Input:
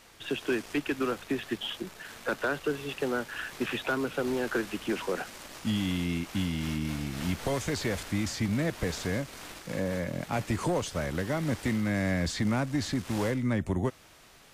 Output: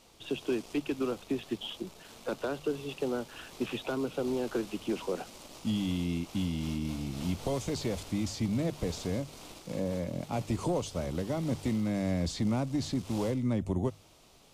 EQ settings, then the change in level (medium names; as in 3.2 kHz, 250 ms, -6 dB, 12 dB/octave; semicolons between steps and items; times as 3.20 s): peaking EQ 1.7 kHz -14 dB 0.83 oct; treble shelf 8.8 kHz -6.5 dB; hum notches 50/100/150 Hz; -1.0 dB